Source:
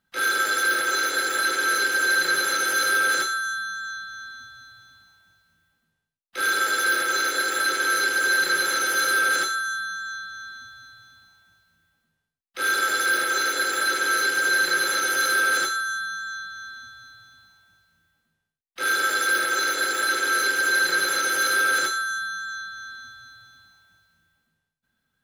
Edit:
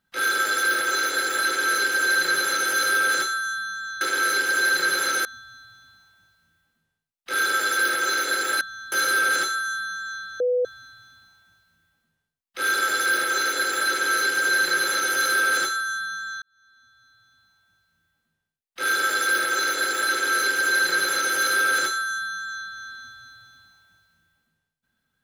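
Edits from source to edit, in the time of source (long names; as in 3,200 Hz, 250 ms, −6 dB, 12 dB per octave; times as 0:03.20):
0:04.01–0:04.32: swap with 0:07.68–0:08.92
0:10.40–0:10.65: beep over 496 Hz −18.5 dBFS
0:16.42–0:18.86: fade in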